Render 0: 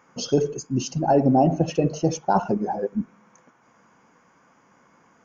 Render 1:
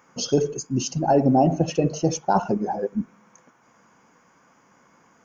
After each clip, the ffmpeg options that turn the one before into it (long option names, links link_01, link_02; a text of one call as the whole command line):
ffmpeg -i in.wav -af "highshelf=frequency=6100:gain=7" out.wav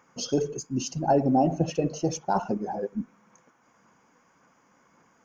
ffmpeg -i in.wav -af "aphaser=in_gain=1:out_gain=1:delay=4:decay=0.25:speed=1.8:type=sinusoidal,volume=-5dB" out.wav